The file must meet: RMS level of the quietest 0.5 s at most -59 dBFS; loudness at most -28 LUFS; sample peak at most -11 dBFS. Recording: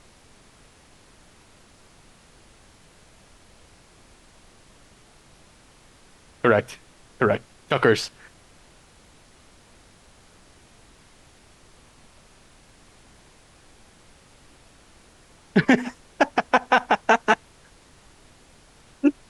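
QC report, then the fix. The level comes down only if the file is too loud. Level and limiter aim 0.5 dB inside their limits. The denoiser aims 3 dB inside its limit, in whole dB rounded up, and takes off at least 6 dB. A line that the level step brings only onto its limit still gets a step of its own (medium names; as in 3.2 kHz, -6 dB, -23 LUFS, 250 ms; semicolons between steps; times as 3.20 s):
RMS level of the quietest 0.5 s -53 dBFS: fail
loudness -22.0 LUFS: fail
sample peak -5.5 dBFS: fail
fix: trim -6.5 dB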